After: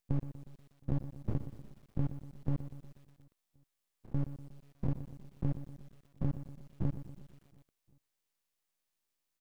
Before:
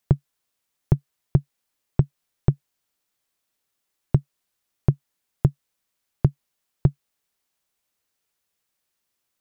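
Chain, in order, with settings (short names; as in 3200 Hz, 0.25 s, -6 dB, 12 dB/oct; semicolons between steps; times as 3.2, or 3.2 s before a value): stepped spectrum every 0.1 s; notch 1400 Hz; half-wave rectifier; on a send: feedback echo 0.358 s, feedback 50%, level -24 dB; on the sum: lo-fi delay 0.121 s, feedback 55%, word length 9-bit, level -12 dB; gain -2 dB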